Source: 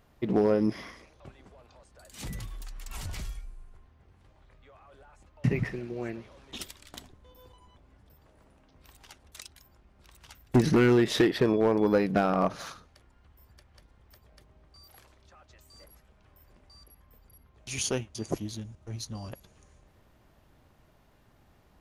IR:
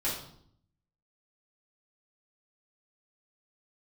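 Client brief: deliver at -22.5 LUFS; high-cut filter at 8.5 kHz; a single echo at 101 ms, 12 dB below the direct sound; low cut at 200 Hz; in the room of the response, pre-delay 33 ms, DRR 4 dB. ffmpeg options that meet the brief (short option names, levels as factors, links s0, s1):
-filter_complex "[0:a]highpass=200,lowpass=8500,aecho=1:1:101:0.251,asplit=2[s0][s1];[1:a]atrim=start_sample=2205,adelay=33[s2];[s1][s2]afir=irnorm=-1:irlink=0,volume=0.299[s3];[s0][s3]amix=inputs=2:normalize=0,volume=1.58"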